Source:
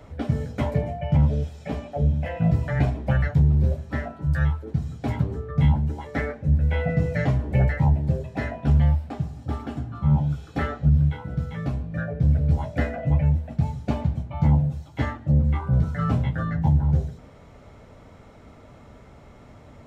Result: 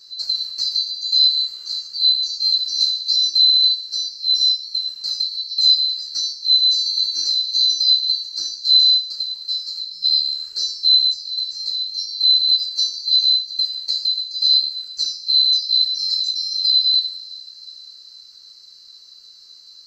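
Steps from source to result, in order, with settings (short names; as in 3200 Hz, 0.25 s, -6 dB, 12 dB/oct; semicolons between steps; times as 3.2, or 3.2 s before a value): band-swap scrambler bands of 4000 Hz; two-slope reverb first 0.42 s, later 4.7 s, from -20 dB, DRR 2.5 dB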